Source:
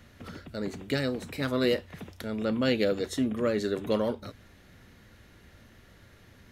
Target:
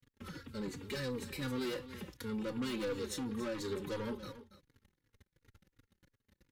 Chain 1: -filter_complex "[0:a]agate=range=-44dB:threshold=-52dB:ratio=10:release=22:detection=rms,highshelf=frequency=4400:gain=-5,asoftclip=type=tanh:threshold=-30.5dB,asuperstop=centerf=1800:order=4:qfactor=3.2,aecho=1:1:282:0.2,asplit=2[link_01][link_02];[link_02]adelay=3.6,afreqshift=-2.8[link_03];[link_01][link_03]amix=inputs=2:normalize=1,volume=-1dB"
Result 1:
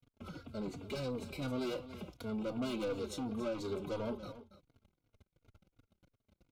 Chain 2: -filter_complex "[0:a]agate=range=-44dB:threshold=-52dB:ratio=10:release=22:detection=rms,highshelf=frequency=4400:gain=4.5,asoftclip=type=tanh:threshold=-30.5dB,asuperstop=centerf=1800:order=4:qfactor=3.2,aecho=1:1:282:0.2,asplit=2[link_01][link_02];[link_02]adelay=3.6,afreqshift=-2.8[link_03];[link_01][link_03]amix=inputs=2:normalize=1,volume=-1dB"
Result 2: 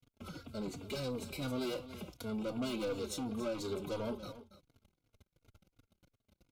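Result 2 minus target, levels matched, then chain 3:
2,000 Hz band −4.0 dB
-filter_complex "[0:a]agate=range=-44dB:threshold=-52dB:ratio=10:release=22:detection=rms,highshelf=frequency=4400:gain=4.5,asoftclip=type=tanh:threshold=-30.5dB,asuperstop=centerf=670:order=4:qfactor=3.2,aecho=1:1:282:0.2,asplit=2[link_01][link_02];[link_02]adelay=3.6,afreqshift=-2.8[link_03];[link_01][link_03]amix=inputs=2:normalize=1,volume=-1dB"

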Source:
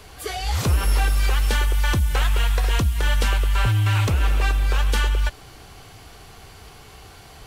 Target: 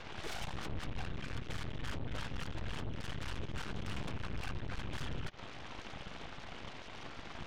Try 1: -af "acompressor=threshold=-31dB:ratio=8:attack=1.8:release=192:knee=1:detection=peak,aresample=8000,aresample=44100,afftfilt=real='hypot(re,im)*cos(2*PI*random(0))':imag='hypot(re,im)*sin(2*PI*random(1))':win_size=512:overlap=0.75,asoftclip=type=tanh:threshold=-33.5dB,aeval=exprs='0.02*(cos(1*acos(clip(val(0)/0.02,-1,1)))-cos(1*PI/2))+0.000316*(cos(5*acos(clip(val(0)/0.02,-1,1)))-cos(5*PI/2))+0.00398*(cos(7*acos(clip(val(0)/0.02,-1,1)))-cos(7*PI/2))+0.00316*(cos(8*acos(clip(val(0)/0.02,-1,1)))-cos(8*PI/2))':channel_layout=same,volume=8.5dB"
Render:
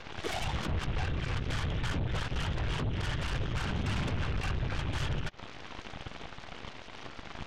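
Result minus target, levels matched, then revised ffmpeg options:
soft clipping: distortion −11 dB
-af "acompressor=threshold=-31dB:ratio=8:attack=1.8:release=192:knee=1:detection=peak,aresample=8000,aresample=44100,afftfilt=real='hypot(re,im)*cos(2*PI*random(0))':imag='hypot(re,im)*sin(2*PI*random(1))':win_size=512:overlap=0.75,asoftclip=type=tanh:threshold=-43.5dB,aeval=exprs='0.02*(cos(1*acos(clip(val(0)/0.02,-1,1)))-cos(1*PI/2))+0.000316*(cos(5*acos(clip(val(0)/0.02,-1,1)))-cos(5*PI/2))+0.00398*(cos(7*acos(clip(val(0)/0.02,-1,1)))-cos(7*PI/2))+0.00316*(cos(8*acos(clip(val(0)/0.02,-1,1)))-cos(8*PI/2))':channel_layout=same,volume=8.5dB"

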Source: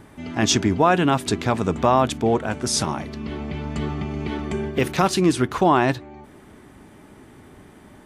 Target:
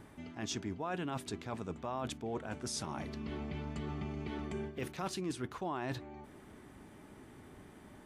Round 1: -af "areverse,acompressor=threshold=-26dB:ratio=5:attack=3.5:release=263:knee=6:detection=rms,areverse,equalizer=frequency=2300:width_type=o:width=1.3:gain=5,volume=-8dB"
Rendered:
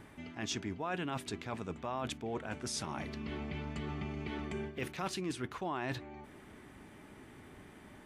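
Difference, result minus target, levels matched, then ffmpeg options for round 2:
2,000 Hz band +3.0 dB
-af "areverse,acompressor=threshold=-26dB:ratio=5:attack=3.5:release=263:knee=6:detection=rms,areverse,volume=-8dB"

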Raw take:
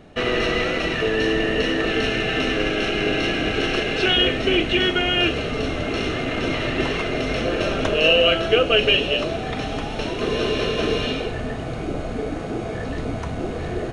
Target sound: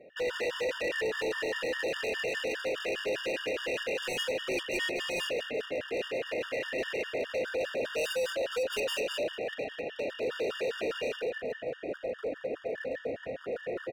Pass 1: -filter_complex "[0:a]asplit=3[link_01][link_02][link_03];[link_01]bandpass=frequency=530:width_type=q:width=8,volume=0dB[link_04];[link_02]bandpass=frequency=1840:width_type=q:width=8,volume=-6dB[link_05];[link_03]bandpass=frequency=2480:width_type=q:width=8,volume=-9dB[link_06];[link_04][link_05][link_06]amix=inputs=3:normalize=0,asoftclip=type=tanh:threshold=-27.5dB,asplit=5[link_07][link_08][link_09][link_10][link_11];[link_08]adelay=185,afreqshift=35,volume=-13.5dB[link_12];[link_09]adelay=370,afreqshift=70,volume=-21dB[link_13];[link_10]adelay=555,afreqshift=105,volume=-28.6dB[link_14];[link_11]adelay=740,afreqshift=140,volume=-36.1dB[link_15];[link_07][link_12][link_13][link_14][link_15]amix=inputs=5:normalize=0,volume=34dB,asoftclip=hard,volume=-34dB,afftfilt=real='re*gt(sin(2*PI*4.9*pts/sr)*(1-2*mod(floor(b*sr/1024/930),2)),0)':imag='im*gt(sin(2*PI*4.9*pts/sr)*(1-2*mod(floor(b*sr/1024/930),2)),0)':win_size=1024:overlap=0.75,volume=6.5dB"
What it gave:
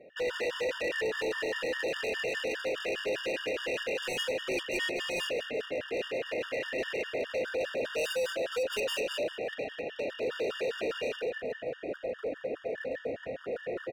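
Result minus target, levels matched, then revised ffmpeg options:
soft clipping: distortion +8 dB
-filter_complex "[0:a]asplit=3[link_01][link_02][link_03];[link_01]bandpass=frequency=530:width_type=q:width=8,volume=0dB[link_04];[link_02]bandpass=frequency=1840:width_type=q:width=8,volume=-6dB[link_05];[link_03]bandpass=frequency=2480:width_type=q:width=8,volume=-9dB[link_06];[link_04][link_05][link_06]amix=inputs=3:normalize=0,asoftclip=type=tanh:threshold=-18.5dB,asplit=5[link_07][link_08][link_09][link_10][link_11];[link_08]adelay=185,afreqshift=35,volume=-13.5dB[link_12];[link_09]adelay=370,afreqshift=70,volume=-21dB[link_13];[link_10]adelay=555,afreqshift=105,volume=-28.6dB[link_14];[link_11]adelay=740,afreqshift=140,volume=-36.1dB[link_15];[link_07][link_12][link_13][link_14][link_15]amix=inputs=5:normalize=0,volume=34dB,asoftclip=hard,volume=-34dB,afftfilt=real='re*gt(sin(2*PI*4.9*pts/sr)*(1-2*mod(floor(b*sr/1024/930),2)),0)':imag='im*gt(sin(2*PI*4.9*pts/sr)*(1-2*mod(floor(b*sr/1024/930),2)),0)':win_size=1024:overlap=0.75,volume=6.5dB"

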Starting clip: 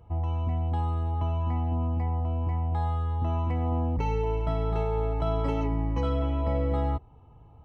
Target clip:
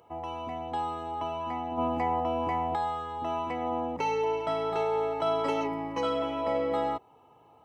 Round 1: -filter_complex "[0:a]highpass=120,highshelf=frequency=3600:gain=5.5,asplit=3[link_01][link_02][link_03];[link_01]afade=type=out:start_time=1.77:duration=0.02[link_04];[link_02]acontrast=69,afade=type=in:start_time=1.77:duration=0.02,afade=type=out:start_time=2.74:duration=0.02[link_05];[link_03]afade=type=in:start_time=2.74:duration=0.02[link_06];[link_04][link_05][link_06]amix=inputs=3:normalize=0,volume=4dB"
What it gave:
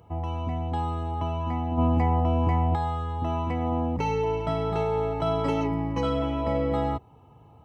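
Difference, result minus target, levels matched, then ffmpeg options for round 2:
125 Hz band +14.0 dB
-filter_complex "[0:a]highpass=380,highshelf=frequency=3600:gain=5.5,asplit=3[link_01][link_02][link_03];[link_01]afade=type=out:start_time=1.77:duration=0.02[link_04];[link_02]acontrast=69,afade=type=in:start_time=1.77:duration=0.02,afade=type=out:start_time=2.74:duration=0.02[link_05];[link_03]afade=type=in:start_time=2.74:duration=0.02[link_06];[link_04][link_05][link_06]amix=inputs=3:normalize=0,volume=4dB"

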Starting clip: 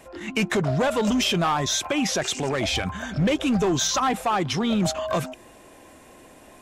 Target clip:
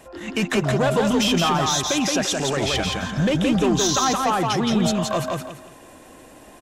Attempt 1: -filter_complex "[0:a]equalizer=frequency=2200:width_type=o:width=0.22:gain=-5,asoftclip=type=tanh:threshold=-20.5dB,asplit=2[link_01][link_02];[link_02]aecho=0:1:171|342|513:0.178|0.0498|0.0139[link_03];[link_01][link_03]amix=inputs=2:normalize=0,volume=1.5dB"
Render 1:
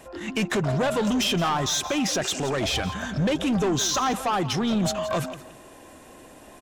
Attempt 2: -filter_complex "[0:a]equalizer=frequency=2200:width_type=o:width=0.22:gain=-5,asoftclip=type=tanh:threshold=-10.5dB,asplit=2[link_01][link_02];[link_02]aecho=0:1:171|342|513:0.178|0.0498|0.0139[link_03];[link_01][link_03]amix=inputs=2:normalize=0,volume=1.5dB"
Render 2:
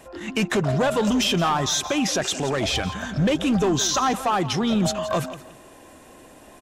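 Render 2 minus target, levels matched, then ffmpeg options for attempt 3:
echo-to-direct −12 dB
-filter_complex "[0:a]equalizer=frequency=2200:width_type=o:width=0.22:gain=-5,asoftclip=type=tanh:threshold=-10.5dB,asplit=2[link_01][link_02];[link_02]aecho=0:1:171|342|513|684:0.708|0.198|0.0555|0.0155[link_03];[link_01][link_03]amix=inputs=2:normalize=0,volume=1.5dB"

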